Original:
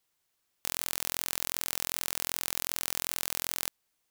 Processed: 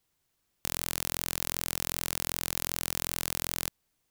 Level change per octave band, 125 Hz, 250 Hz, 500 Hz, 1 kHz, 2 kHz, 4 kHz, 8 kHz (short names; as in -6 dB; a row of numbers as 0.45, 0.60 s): +10.0, +6.5, +3.0, +1.0, +0.5, 0.0, 0.0 dB